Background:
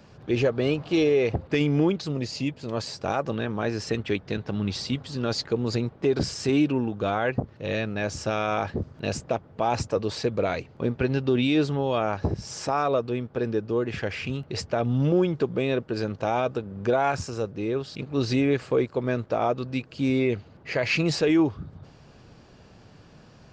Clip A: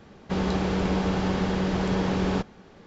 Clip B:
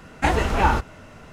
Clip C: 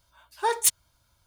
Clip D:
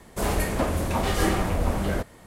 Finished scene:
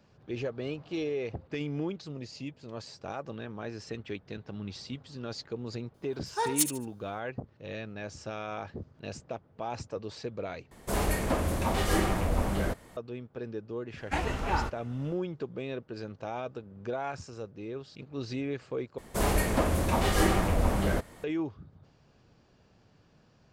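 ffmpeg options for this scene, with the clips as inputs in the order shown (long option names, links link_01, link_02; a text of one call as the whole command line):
ffmpeg -i bed.wav -i cue0.wav -i cue1.wav -i cue2.wav -i cue3.wav -filter_complex "[4:a]asplit=2[link_01][link_02];[0:a]volume=-11.5dB[link_03];[3:a]aecho=1:1:73|146|219:0.266|0.0798|0.0239[link_04];[link_03]asplit=3[link_05][link_06][link_07];[link_05]atrim=end=10.714[link_08];[link_01]atrim=end=2.26,asetpts=PTS-STARTPTS,volume=-3.5dB[link_09];[link_06]atrim=start=12.966:end=18.984[link_10];[link_02]atrim=end=2.26,asetpts=PTS-STARTPTS,volume=-1.5dB[link_11];[link_07]atrim=start=21.236[link_12];[link_04]atrim=end=1.26,asetpts=PTS-STARTPTS,volume=-5.5dB,afade=type=in:duration=0.004:curve=hsin,afade=type=out:start_time=1.256:duration=0.004:curve=hsin,adelay=5940[link_13];[2:a]atrim=end=1.32,asetpts=PTS-STARTPTS,volume=-10.5dB,afade=type=in:duration=0.1,afade=type=out:start_time=1.22:duration=0.1,adelay=13890[link_14];[link_08][link_09]acrossfade=duration=0.004:curve1=hsin:curve2=hsin[link_15];[link_15][link_10]acrossfade=duration=0.004:curve1=hsin:curve2=hsin[link_16];[link_16][link_11]acrossfade=duration=0.004:curve1=hsin:curve2=hsin[link_17];[link_17][link_12]acrossfade=duration=0.004:curve1=hsin:curve2=hsin[link_18];[link_18][link_13][link_14]amix=inputs=3:normalize=0" out.wav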